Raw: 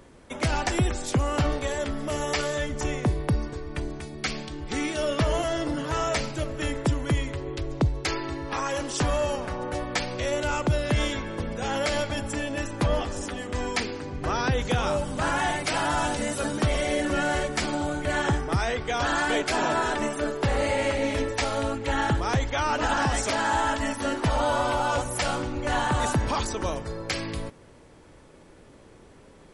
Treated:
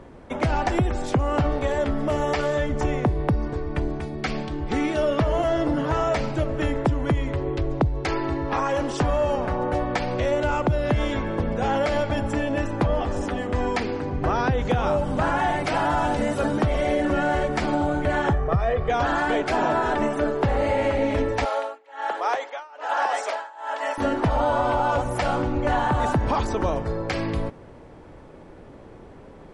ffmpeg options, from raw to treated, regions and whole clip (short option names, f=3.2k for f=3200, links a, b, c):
-filter_complex "[0:a]asettb=1/sr,asplit=3[a][b][c];[a]atrim=end=18.334[d];[b]atrim=start=18.33:end=18.9,asetpts=PTS-STARTPTS,afade=t=in:d=0.004:c=qsin,afade=t=out:st=0.566:d=0.004:c=qsin,lowpass=f=1.7k:p=1,aecho=1:1:1.7:0.7,atrim=end_sample=25137[e];[c]atrim=start=18.896[f];[d][e]acrossfade=d=0.004:c1=hsin:c2=qsin[g];[g][f]acrossfade=d=0.004:c1=qsin:c2=hsin,asettb=1/sr,asplit=3[h][i][j];[h]atrim=end=21.454[k];[i]atrim=start=21.45:end=23.98,asetpts=PTS-STARTPTS,afade=t=in:d=0.004:c=qsin,afade=t=out:st=2.526:d=0.004:c=qsin,highpass=f=500:w=0.5412,highpass=f=500:w=1.3066,tremolo=f=1.2:d=0.96[l];[j]atrim=start=23.976[m];[k][l]acrossfade=d=0.004:c1=hsin:c2=qsin[n];[n][m]acrossfade=d=0.004:c1=qsin:c2=hsin,acompressor=threshold=-25dB:ratio=6,lowpass=f=1.4k:p=1,equalizer=f=760:t=o:w=0.55:g=3,volume=7dB"